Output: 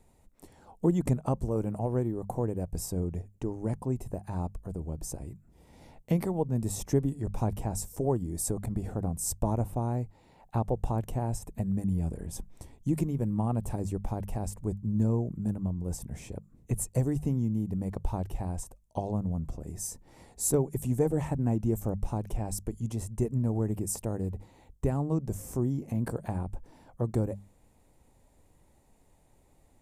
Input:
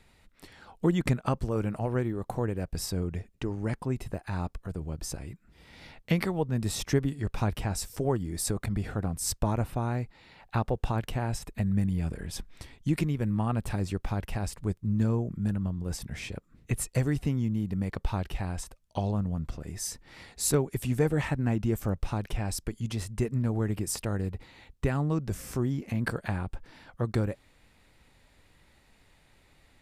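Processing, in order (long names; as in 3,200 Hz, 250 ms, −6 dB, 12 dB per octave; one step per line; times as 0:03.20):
flat-topped bell 2,500 Hz −13.5 dB 2.3 octaves
mains-hum notches 50/100/150/200 Hz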